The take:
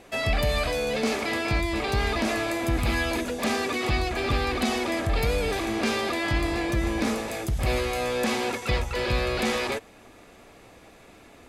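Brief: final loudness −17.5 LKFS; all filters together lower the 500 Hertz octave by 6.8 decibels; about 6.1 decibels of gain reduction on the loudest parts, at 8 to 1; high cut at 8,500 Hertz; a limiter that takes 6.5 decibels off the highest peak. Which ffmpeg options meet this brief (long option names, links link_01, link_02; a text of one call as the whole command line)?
ffmpeg -i in.wav -af "lowpass=8500,equalizer=frequency=500:width_type=o:gain=-9,acompressor=threshold=-27dB:ratio=8,volume=15dB,alimiter=limit=-8.5dB:level=0:latency=1" out.wav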